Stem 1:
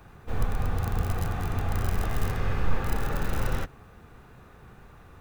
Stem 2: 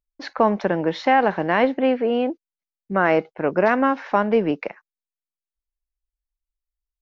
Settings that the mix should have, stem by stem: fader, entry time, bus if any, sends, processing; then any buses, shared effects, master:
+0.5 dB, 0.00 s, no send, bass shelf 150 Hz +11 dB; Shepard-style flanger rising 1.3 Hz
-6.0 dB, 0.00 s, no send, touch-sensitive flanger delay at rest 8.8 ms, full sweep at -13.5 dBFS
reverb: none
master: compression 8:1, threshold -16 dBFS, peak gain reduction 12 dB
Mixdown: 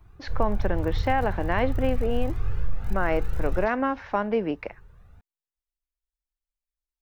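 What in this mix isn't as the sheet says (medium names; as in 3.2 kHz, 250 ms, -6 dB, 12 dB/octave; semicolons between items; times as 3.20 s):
stem 1 +0.5 dB -> -7.0 dB; stem 2: missing touch-sensitive flanger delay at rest 8.8 ms, full sweep at -13.5 dBFS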